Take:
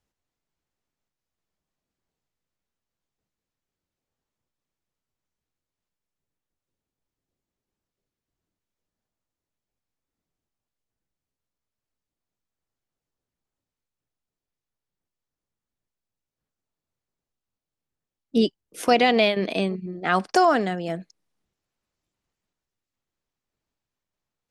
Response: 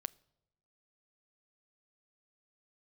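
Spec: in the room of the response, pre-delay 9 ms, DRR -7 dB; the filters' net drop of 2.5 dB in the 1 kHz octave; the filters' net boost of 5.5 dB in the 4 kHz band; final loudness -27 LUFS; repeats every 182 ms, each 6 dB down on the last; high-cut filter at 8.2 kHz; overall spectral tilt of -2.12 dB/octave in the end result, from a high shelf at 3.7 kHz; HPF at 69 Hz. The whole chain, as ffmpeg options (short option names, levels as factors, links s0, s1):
-filter_complex "[0:a]highpass=69,lowpass=8200,equalizer=f=1000:t=o:g=-4.5,highshelf=f=3700:g=3,equalizer=f=4000:t=o:g=6,aecho=1:1:182|364|546|728|910|1092:0.501|0.251|0.125|0.0626|0.0313|0.0157,asplit=2[s0][s1];[1:a]atrim=start_sample=2205,adelay=9[s2];[s1][s2]afir=irnorm=-1:irlink=0,volume=2.99[s3];[s0][s3]amix=inputs=2:normalize=0,volume=0.211"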